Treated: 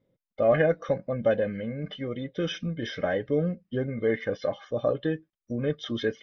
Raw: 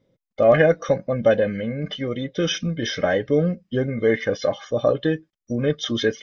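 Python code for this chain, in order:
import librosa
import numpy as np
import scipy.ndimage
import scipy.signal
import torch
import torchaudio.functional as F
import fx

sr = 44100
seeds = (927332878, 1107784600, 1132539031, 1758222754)

y = fx.air_absorb(x, sr, metres=170.0)
y = F.gain(torch.from_numpy(y), -6.0).numpy()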